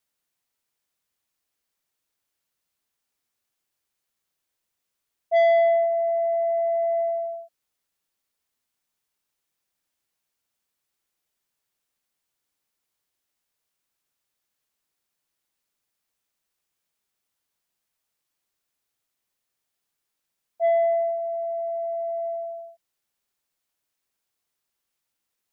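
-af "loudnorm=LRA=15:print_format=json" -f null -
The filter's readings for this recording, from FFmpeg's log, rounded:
"input_i" : "-23.8",
"input_tp" : "-15.1",
"input_lra" : "12.7",
"input_thresh" : "-34.8",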